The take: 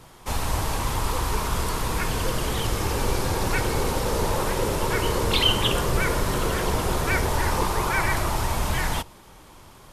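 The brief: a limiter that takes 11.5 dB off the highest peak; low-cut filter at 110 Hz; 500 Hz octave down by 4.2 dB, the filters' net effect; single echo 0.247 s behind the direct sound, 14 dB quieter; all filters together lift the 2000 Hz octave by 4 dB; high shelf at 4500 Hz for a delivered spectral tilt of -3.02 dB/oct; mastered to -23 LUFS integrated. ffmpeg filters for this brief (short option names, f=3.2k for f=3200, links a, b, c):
-af "highpass=110,equalizer=f=500:t=o:g=-5.5,equalizer=f=2k:t=o:g=4.5,highshelf=f=4.5k:g=5,alimiter=limit=-17dB:level=0:latency=1,aecho=1:1:247:0.2,volume=3dB"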